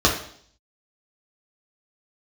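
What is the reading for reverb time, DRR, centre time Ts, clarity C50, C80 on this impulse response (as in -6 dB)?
0.60 s, -3.0 dB, 25 ms, 7.0 dB, 10.5 dB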